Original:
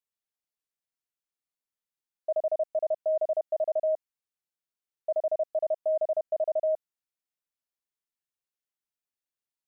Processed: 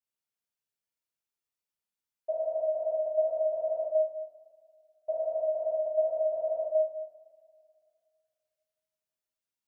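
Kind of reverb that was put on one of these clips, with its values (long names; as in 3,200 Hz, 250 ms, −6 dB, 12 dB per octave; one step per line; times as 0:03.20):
coupled-rooms reverb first 0.85 s, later 2.4 s, from −18 dB, DRR −7 dB
level −8 dB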